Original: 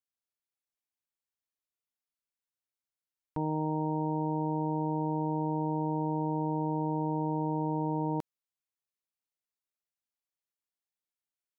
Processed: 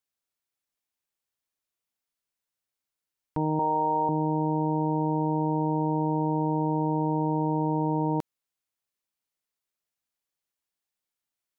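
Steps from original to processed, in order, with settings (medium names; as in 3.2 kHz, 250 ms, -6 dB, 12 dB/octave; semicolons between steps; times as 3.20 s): 3.59–4.09 s: graphic EQ 125/250/500/1000 Hz -12/-9/+3/+7 dB; trim +5 dB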